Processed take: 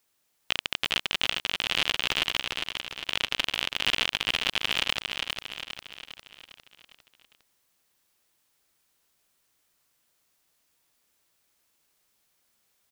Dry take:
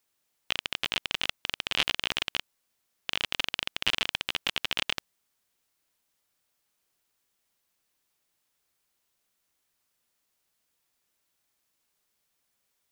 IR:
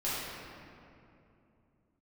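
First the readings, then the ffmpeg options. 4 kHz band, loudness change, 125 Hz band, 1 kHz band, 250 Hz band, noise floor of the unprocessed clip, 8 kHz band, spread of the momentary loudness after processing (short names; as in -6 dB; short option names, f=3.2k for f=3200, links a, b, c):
+3.5 dB, +2.5 dB, +3.5 dB, +3.5 dB, +3.5 dB, -78 dBFS, +3.0 dB, 13 LU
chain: -af "alimiter=limit=-11.5dB:level=0:latency=1:release=17,aecho=1:1:404|808|1212|1616|2020|2424:0.562|0.287|0.146|0.0746|0.038|0.0194,volume=4dB"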